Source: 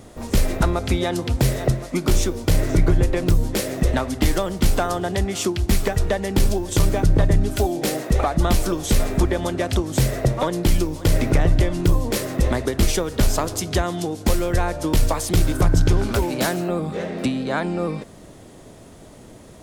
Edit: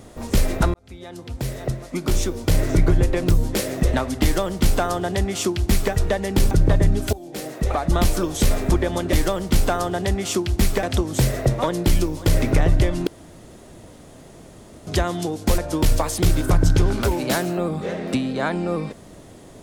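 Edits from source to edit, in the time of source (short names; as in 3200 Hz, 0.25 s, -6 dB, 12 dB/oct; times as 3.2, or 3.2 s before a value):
0.74–2.61 fade in linear
4.23–5.93 copy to 9.62
6.51–7 cut
7.62–8.45 fade in, from -20 dB
11.86–13.66 room tone
14.37–14.69 cut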